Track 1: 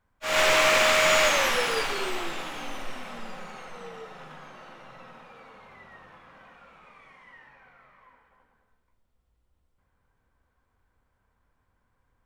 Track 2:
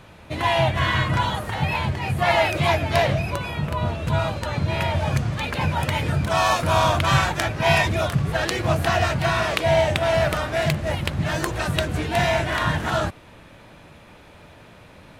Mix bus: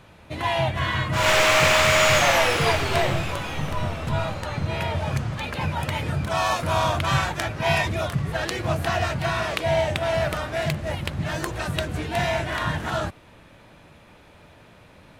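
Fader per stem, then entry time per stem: +2.5, -3.5 dB; 0.90, 0.00 s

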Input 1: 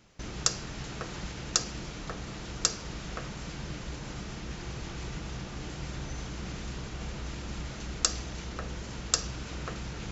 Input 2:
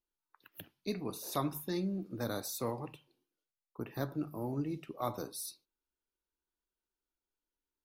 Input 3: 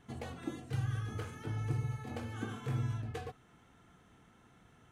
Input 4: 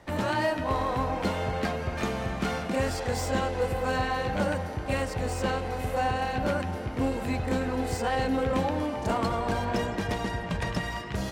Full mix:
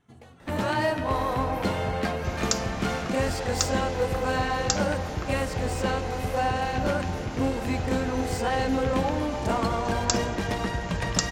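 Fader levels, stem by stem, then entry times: 0.0, -12.0, -6.5, +1.5 dB; 2.05, 0.00, 0.00, 0.40 s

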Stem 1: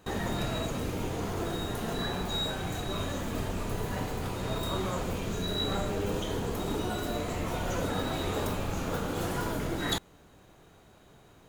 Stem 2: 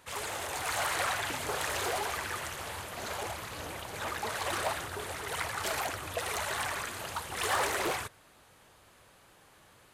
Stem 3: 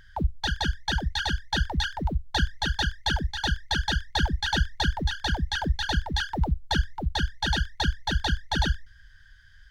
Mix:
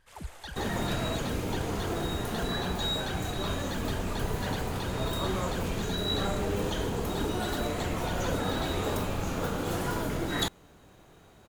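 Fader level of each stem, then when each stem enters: +1.0, -14.5, -15.0 dB; 0.50, 0.00, 0.00 s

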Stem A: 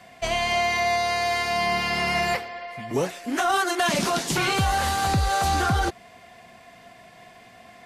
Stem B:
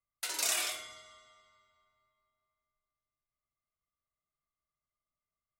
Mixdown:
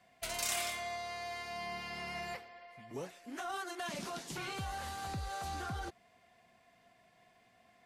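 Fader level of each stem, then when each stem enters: -18.0, -5.0 dB; 0.00, 0.00 s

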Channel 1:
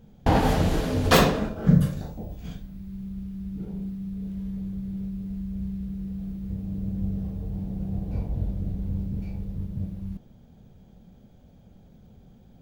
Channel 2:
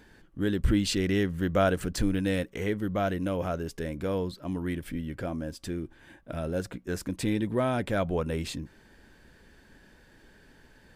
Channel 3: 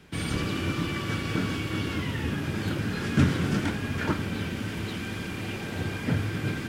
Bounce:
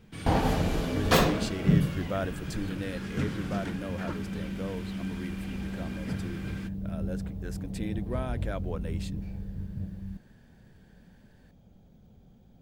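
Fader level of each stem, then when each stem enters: -4.5, -8.0, -9.5 dB; 0.00, 0.55, 0.00 s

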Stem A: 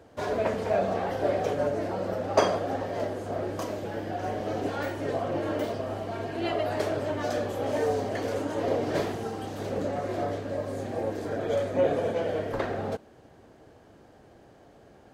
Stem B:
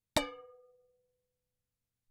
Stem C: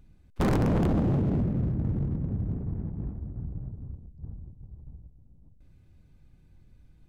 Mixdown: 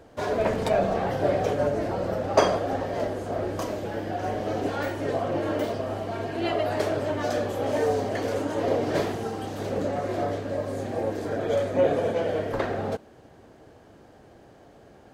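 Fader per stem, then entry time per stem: +2.5, -4.0, -12.5 dB; 0.00, 0.50, 0.00 s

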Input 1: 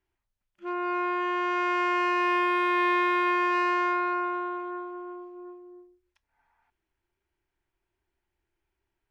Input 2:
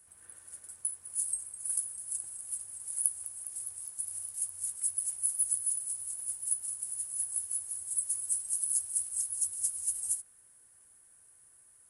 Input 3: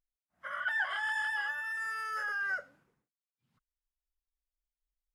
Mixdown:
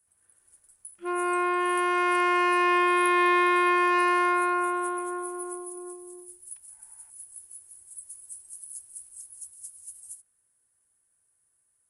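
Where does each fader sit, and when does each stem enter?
+2.5 dB, -11.0 dB, off; 0.40 s, 0.00 s, off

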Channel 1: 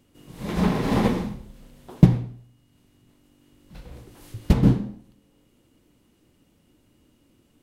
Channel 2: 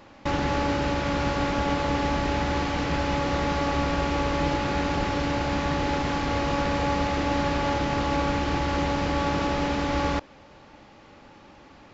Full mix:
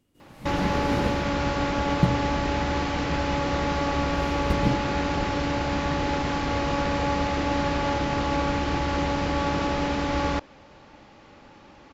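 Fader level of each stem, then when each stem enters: -8.5, 0.0 dB; 0.00, 0.20 s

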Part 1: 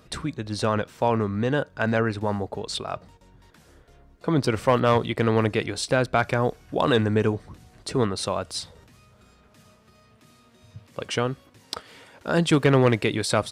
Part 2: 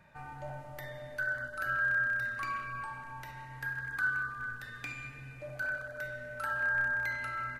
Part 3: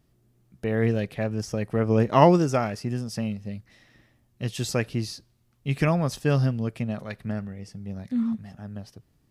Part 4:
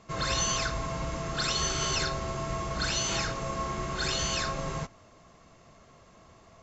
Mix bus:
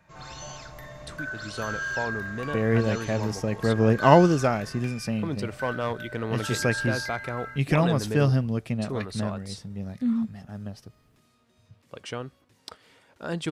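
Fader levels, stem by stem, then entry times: -9.5, -1.5, +0.5, -14.0 dB; 0.95, 0.00, 1.90, 0.00 s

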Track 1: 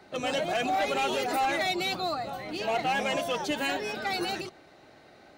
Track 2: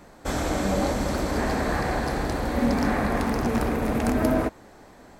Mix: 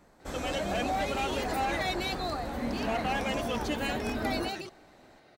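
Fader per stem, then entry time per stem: -4.0, -11.0 dB; 0.20, 0.00 s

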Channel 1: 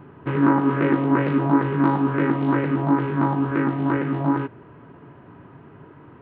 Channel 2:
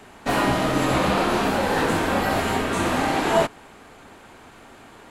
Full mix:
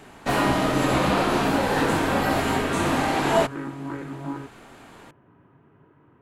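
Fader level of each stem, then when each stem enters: -11.0, -1.0 dB; 0.00, 0.00 s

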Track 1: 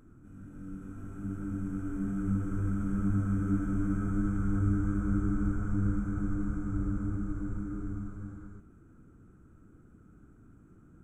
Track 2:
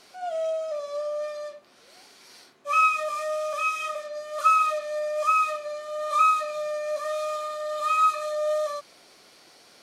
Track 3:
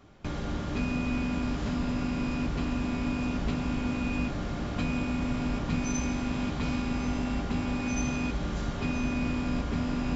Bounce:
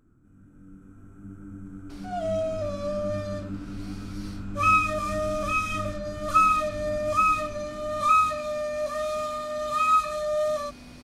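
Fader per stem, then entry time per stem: -6.0, 0.0, -17.0 dB; 0.00, 1.90, 1.65 s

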